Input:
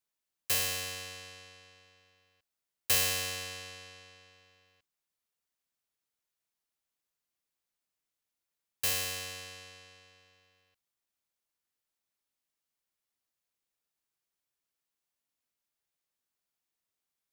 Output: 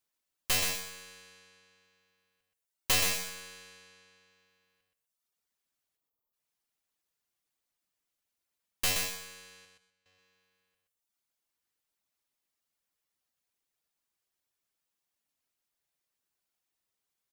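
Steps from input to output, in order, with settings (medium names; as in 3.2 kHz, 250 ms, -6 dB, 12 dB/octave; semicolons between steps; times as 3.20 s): tracing distortion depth 0.075 ms; reverb removal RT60 1 s; in parallel at -7 dB: hard clipper -27.5 dBFS, distortion -11 dB; 5.97–6.33 s: on the sum: spectral selection erased 1.3–11 kHz; 9.65–10.06 s: gate -58 dBFS, range -17 dB; on a send: feedback delay 125 ms, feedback 21%, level -4.5 dB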